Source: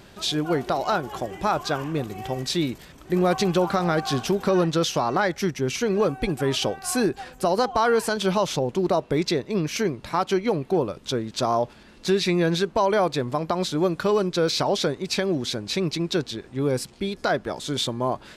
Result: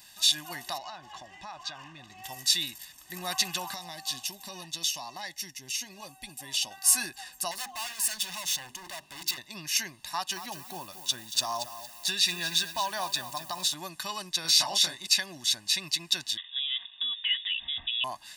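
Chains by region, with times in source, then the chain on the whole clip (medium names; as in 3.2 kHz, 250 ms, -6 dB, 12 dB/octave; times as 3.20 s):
0.78–2.24 s: compression 10:1, threshold -25 dBFS + distance through air 150 m
3.74–6.71 s: peaking EQ 1.4 kHz -14.5 dB 0.45 oct + flange 1.8 Hz, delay 2.9 ms, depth 2.2 ms, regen +77%
7.51–9.38 s: hum notches 50/100/150/200/250/300/350/400 Hz + hard clipper -28 dBFS
10.08–13.74 s: band-stop 2.1 kHz, Q 7.3 + bit-crushed delay 230 ms, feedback 35%, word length 7-bit, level -10.5 dB
14.42–15.07 s: doubling 25 ms -3 dB + tape noise reduction on one side only encoder only
16.37–18.04 s: comb 4.5 ms, depth 40% + compression 4:1, threshold -26 dBFS + frequency inversion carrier 3.6 kHz
whole clip: pre-emphasis filter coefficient 0.97; comb 1.1 ms, depth 93%; dynamic bell 2.3 kHz, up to +4 dB, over -44 dBFS, Q 0.98; trim +4 dB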